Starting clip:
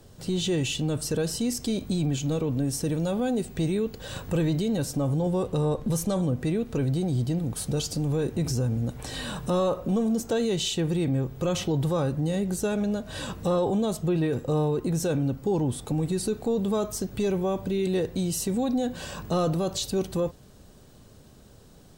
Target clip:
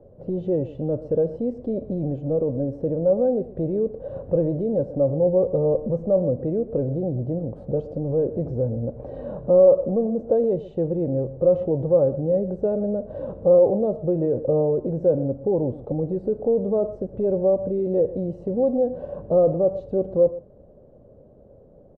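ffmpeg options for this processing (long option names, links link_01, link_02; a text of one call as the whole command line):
ffmpeg -i in.wav -filter_complex "[0:a]lowpass=frequency=560:width_type=q:width=5.8,asplit=2[link_01][link_02];[link_02]aecho=0:1:122:0.15[link_03];[link_01][link_03]amix=inputs=2:normalize=0,volume=-2dB" out.wav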